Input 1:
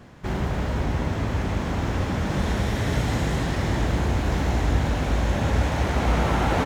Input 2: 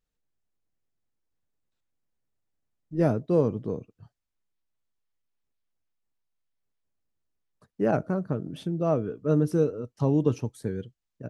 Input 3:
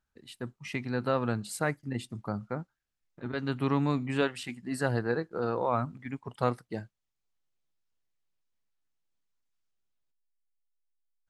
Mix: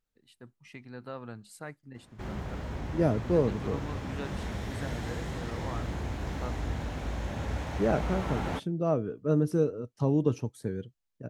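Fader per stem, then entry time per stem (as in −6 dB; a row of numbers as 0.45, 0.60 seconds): −11.5, −2.5, −12.5 decibels; 1.95, 0.00, 0.00 seconds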